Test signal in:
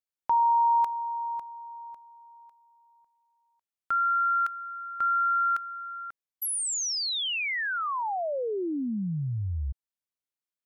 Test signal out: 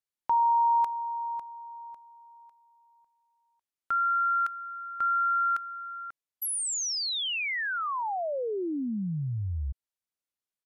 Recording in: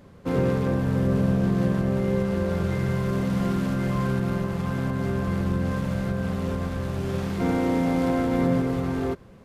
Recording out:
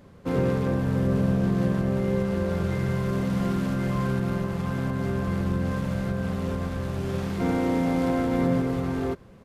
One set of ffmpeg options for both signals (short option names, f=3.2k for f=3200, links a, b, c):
-af "aresample=32000,aresample=44100,volume=-1dB"